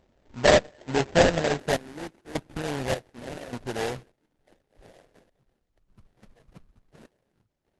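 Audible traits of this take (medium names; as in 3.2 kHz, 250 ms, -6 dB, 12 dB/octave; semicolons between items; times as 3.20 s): aliases and images of a low sample rate 1.2 kHz, jitter 20%; random-step tremolo 1.7 Hz, depth 90%; Opus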